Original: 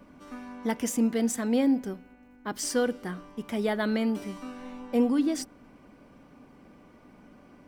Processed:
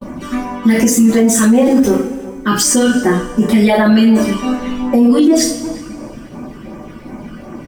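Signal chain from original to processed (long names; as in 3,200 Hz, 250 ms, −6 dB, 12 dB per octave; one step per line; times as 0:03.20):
0:01.08–0:01.95: converter with a step at zero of −39.5 dBFS
reverb reduction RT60 0.82 s
all-pass phaser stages 12, 2.7 Hz, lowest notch 650–4,400 Hz
coupled-rooms reverb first 0.38 s, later 1.8 s, from −20 dB, DRR −6.5 dB
noise gate −53 dBFS, range −39 dB
far-end echo of a speakerphone 360 ms, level −20 dB
boost into a limiter +21.5 dB
level −2.5 dB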